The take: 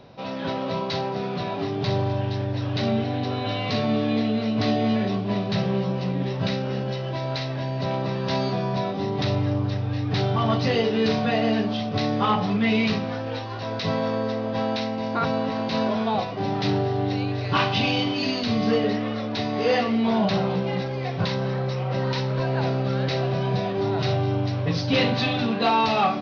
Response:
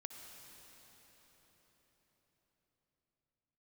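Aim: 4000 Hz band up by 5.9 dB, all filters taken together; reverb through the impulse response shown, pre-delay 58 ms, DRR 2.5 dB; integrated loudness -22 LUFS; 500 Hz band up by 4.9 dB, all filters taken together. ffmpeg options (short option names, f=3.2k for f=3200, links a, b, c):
-filter_complex "[0:a]equalizer=f=500:t=o:g=6,equalizer=f=4k:t=o:g=7,asplit=2[a][b];[1:a]atrim=start_sample=2205,adelay=58[c];[b][c]afir=irnorm=-1:irlink=0,volume=1.5dB[d];[a][d]amix=inputs=2:normalize=0,volume=-2.5dB"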